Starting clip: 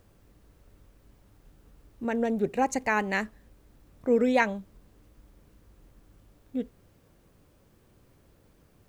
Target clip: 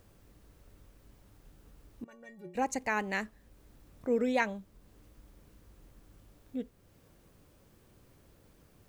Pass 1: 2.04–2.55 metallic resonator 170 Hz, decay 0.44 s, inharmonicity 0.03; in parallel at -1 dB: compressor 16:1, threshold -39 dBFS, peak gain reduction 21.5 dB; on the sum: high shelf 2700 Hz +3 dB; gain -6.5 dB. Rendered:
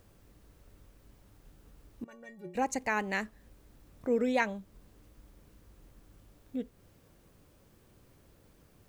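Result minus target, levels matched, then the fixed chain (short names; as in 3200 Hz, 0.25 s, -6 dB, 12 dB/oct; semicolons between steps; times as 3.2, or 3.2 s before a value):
compressor: peak gain reduction -8.5 dB
2.04–2.55 metallic resonator 170 Hz, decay 0.44 s, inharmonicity 0.03; in parallel at -1 dB: compressor 16:1, threshold -48 dBFS, peak gain reduction 30 dB; on the sum: high shelf 2700 Hz +3 dB; gain -6.5 dB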